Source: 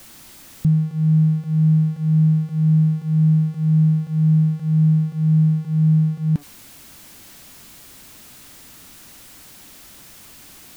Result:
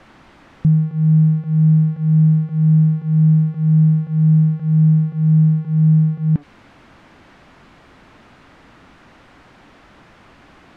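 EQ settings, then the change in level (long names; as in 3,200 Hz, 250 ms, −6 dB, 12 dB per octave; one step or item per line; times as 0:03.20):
low-pass filter 1,600 Hz 12 dB per octave
dynamic equaliser 960 Hz, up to −4 dB, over −43 dBFS, Q 1.1
low-shelf EQ 420 Hz −4.5 dB
+7.0 dB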